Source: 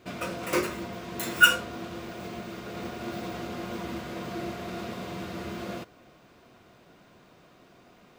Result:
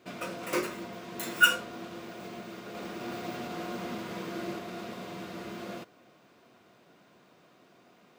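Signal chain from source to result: 2.50–4.59 s: chunks repeated in reverse 247 ms, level -1 dB; high-pass 150 Hz 12 dB/octave; trim -3.5 dB

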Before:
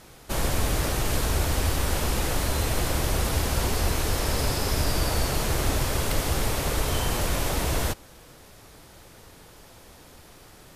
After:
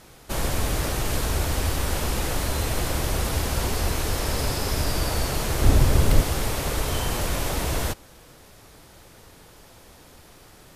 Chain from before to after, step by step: 5.62–6.24 s: bass shelf 380 Hz +10 dB

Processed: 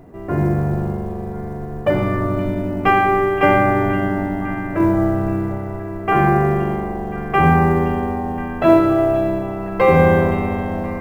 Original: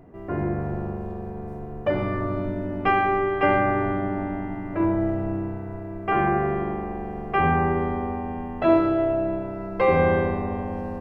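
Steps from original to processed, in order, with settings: dynamic bell 150 Hz, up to +6 dB, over -42 dBFS, Q 2.8; companded quantiser 8-bit; repeats whose band climbs or falls 520 ms, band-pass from 2.8 kHz, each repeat -0.7 oct, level -11 dB; trim +6 dB

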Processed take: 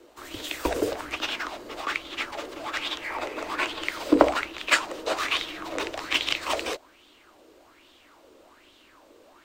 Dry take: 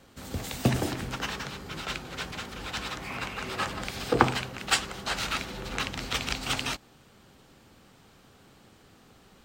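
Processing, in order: frequency shift -190 Hz; resonant low shelf 220 Hz -11 dB, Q 3; sweeping bell 1.2 Hz 440–3500 Hz +13 dB; trim -1.5 dB

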